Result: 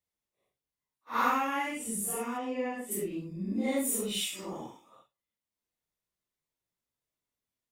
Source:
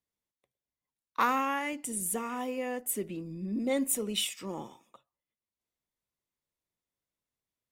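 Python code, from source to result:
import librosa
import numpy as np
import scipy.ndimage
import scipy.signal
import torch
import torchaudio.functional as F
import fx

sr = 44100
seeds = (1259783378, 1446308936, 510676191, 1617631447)

y = fx.phase_scramble(x, sr, seeds[0], window_ms=200)
y = fx.air_absorb(y, sr, metres=93.0, at=(2.37, 2.9), fade=0.02)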